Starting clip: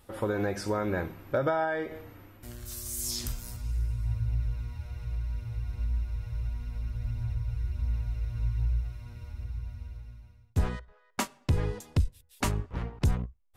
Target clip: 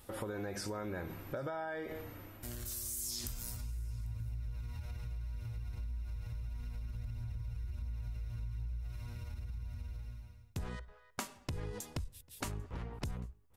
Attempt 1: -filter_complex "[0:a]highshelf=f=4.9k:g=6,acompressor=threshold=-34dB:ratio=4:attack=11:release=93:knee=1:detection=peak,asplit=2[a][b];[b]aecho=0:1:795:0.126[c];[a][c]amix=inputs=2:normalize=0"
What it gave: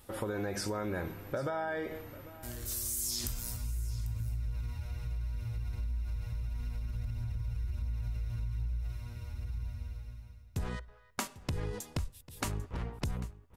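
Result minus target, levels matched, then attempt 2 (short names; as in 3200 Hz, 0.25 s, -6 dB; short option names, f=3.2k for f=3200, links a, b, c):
echo-to-direct +9.5 dB; compressor: peak gain reduction -5 dB
-filter_complex "[0:a]highshelf=f=4.9k:g=6,acompressor=threshold=-40.5dB:ratio=4:attack=11:release=93:knee=1:detection=peak,asplit=2[a][b];[b]aecho=0:1:795:0.0422[c];[a][c]amix=inputs=2:normalize=0"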